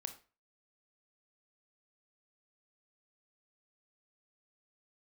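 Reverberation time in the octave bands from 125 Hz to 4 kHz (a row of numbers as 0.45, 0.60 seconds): 0.40, 0.35, 0.35, 0.35, 0.35, 0.30 seconds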